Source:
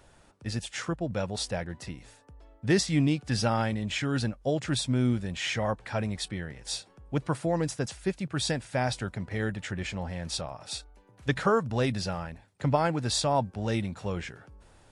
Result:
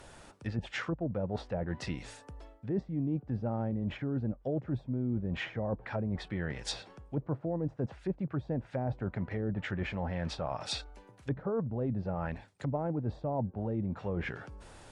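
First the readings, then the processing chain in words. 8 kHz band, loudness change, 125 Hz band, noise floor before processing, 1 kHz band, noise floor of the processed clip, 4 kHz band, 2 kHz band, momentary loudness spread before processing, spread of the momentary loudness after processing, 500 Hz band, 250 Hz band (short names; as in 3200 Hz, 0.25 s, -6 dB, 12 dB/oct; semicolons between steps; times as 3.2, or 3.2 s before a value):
-15.0 dB, -5.5 dB, -4.0 dB, -59 dBFS, -9.0 dB, -58 dBFS, -10.5 dB, -7.5 dB, 11 LU, 6 LU, -5.5 dB, -4.0 dB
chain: treble ducked by the level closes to 540 Hz, closed at -26.5 dBFS; low shelf 180 Hz -3.5 dB; reverse; compressor 6:1, threshold -37 dBFS, peak gain reduction 15.5 dB; reverse; gain +6.5 dB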